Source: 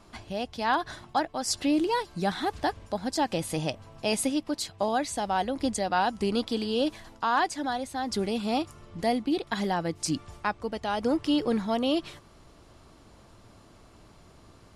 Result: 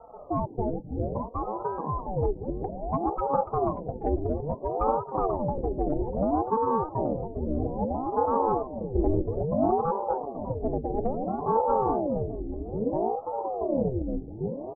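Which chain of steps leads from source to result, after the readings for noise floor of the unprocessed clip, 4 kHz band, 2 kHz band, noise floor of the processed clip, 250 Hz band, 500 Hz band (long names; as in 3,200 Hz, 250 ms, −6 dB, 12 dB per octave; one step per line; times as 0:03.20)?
−55 dBFS, below −40 dB, below −20 dB, −42 dBFS, −1.5 dB, +4.0 dB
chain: spectral magnitudes quantised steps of 15 dB
treble cut that deepens with the level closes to 340 Hz, closed at −23.5 dBFS
low-shelf EQ 200 Hz +5.5 dB
in parallel at 0 dB: output level in coarse steps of 18 dB
on the sum: Chebyshev low-pass with heavy ripple 650 Hz, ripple 3 dB
soft clipping −20 dBFS, distortion −20 dB
phaser with its sweep stopped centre 330 Hz, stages 6
delay with pitch and tempo change per echo 149 ms, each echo −6 semitones, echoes 2
single-tap delay 830 ms −11 dB
ring modulator whose carrier an LFO sweeps 420 Hz, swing 65%, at 0.6 Hz
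level +6 dB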